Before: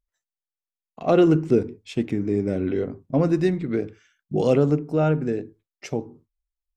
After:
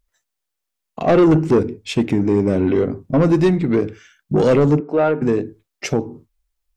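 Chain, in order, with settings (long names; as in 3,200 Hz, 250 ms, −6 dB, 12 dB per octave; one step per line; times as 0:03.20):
in parallel at −2.5 dB: downward compressor, threshold −32 dBFS, peak gain reduction 18 dB
0:04.80–0:05.22: on the sum: band-pass filter 370–2,500 Hz
soft clipping −15.5 dBFS, distortion −12 dB
level +7.5 dB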